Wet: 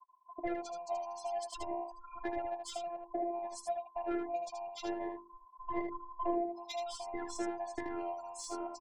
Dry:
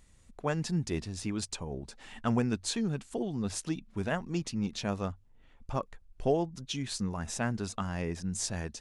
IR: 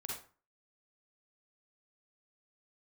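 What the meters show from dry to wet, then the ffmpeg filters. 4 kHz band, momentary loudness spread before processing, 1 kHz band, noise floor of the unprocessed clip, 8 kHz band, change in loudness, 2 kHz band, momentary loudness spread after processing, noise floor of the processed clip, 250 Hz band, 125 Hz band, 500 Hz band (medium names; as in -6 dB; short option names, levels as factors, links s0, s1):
-9.5 dB, 8 LU, +2.0 dB, -60 dBFS, -11.0 dB, -6.0 dB, -8.5 dB, 6 LU, -61 dBFS, -8.5 dB, under -25 dB, -2.0 dB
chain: -af "afftfilt=real='real(if(between(b,1,1008),(2*floor((b-1)/48)+1)*48-b,b),0)':imag='imag(if(between(b,1,1008),(2*floor((b-1)/48)+1)*48-b,b),0)*if(between(b,1,1008),-1,1)':win_size=2048:overlap=0.75,afftfilt=real='re*gte(hypot(re,im),0.0141)':imag='im*gte(hypot(re,im),0.0141)':win_size=1024:overlap=0.75,bass=f=250:g=-8,treble=f=4000:g=-3,bandreject=f=50:t=h:w=6,bandreject=f=100:t=h:w=6,bandreject=f=150:t=h:w=6,bandreject=f=200:t=h:w=6,bandreject=f=250:t=h:w=6,bandreject=f=300:t=h:w=6,bandreject=f=350:t=h:w=6,bandreject=f=400:t=h:w=6,bandreject=f=450:t=h:w=6,acompressor=threshold=0.0141:ratio=5,asoftclip=type=tanh:threshold=0.0316,afftfilt=real='hypot(re,im)*cos(PI*b)':imag='0':win_size=512:overlap=0.75,tiltshelf=f=660:g=9,aecho=1:1:14|78:0.158|0.501,volume=2.66"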